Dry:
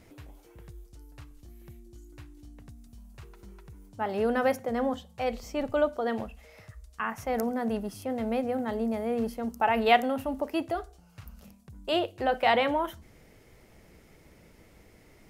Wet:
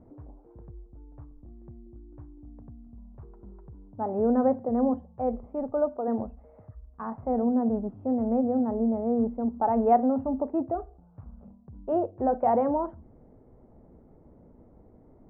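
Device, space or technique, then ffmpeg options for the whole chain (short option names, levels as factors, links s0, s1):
under water: -filter_complex "[0:a]asettb=1/sr,asplit=3[s0][s1][s2];[s0]atrim=end=5.464[s3];[s1]atrim=start=5.46:end=6.08,asetpts=PTS-STARTPTS,afade=t=in:d=0.004:c=qsin,afade=t=out:st=0.616:d=0.004:c=qsin,lowshelf=f=280:g=-9[s4];[s2]atrim=start=6.076[s5];[s3][s4]acrossfade=d=0.004:c1=hsin:c2=qsin[s6];[s6][s5]acrossfade=d=0.004:c1=qsin:c2=hsin,lowpass=f=950:w=0.5412,lowpass=f=950:w=1.3066,equalizer=f=250:t=o:w=0.23:g=7.5,volume=1.19"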